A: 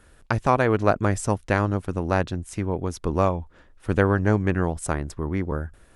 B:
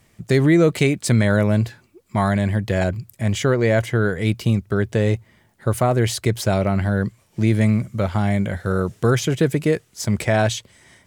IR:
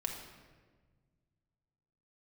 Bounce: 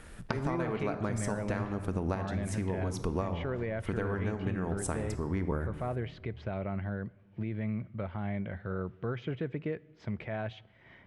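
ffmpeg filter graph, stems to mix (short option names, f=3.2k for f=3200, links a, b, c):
-filter_complex "[0:a]acompressor=threshold=-25dB:ratio=4,volume=1dB,asplit=2[a][b];[b]volume=-9.5dB[c];[1:a]alimiter=limit=-12dB:level=0:latency=1:release=156,lowpass=f=2.9k:w=0.5412,lowpass=f=2.9k:w=1.3066,acompressor=mode=upward:threshold=-31dB:ratio=2.5,volume=-14dB,asplit=3[d][e][f];[e]volume=-19dB[g];[f]apad=whole_len=262634[h];[a][h]sidechaincompress=threshold=-43dB:ratio=8:attack=16:release=499[i];[2:a]atrim=start_sample=2205[j];[c][g]amix=inputs=2:normalize=0[k];[k][j]afir=irnorm=-1:irlink=0[l];[i][d][l]amix=inputs=3:normalize=0,acompressor=threshold=-27dB:ratio=6"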